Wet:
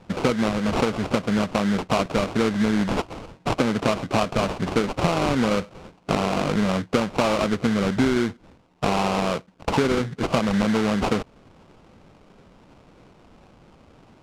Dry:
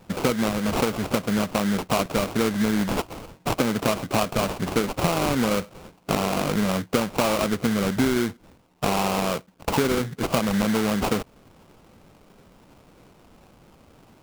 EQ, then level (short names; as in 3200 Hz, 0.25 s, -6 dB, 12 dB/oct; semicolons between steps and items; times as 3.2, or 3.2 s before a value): air absorption 71 m; +1.5 dB